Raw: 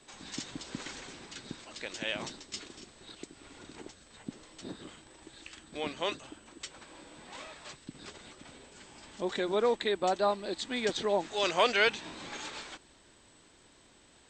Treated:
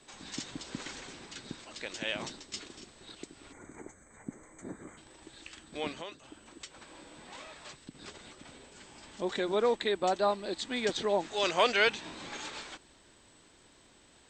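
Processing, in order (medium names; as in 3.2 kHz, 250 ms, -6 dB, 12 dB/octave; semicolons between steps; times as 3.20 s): 3.52–4.97 s: time-frequency box 2.4–6 kHz -21 dB; 6.00–8.03 s: compression 3:1, threshold -43 dBFS, peak gain reduction 12 dB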